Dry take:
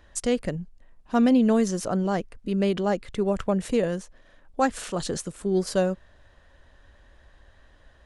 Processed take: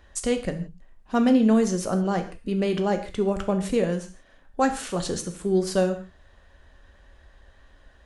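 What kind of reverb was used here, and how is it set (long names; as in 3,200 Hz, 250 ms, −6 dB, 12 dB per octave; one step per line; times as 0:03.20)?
reverb whose tail is shaped and stops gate 190 ms falling, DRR 6 dB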